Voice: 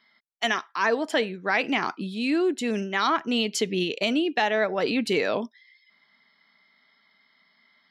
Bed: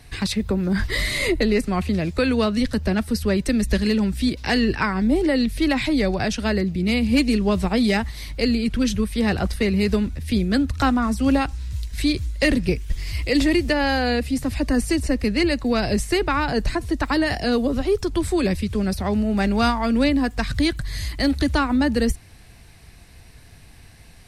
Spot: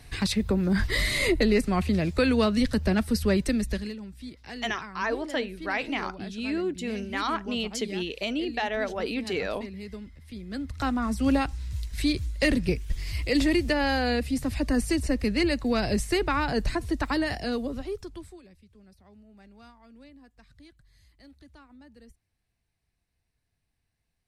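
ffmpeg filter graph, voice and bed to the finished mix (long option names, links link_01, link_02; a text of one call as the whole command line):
ffmpeg -i stem1.wav -i stem2.wav -filter_complex "[0:a]adelay=4200,volume=-5.5dB[link_01];[1:a]volume=12.5dB,afade=type=out:start_time=3.35:duration=0.61:silence=0.141254,afade=type=in:start_time=10.42:duration=0.83:silence=0.177828,afade=type=out:start_time=16.91:duration=1.51:silence=0.0398107[link_02];[link_01][link_02]amix=inputs=2:normalize=0" out.wav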